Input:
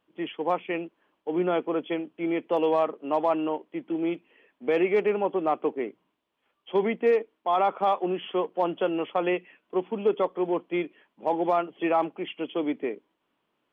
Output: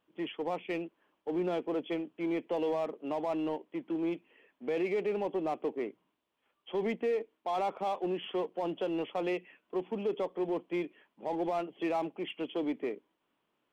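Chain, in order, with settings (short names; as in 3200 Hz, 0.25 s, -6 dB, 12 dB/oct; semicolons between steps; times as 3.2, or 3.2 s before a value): in parallel at -4 dB: hard clip -30 dBFS, distortion -5 dB; on the sum: dynamic EQ 1300 Hz, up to -7 dB, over -41 dBFS, Q 1.8; limiter -17 dBFS, peak gain reduction 3.5 dB; gain -7.5 dB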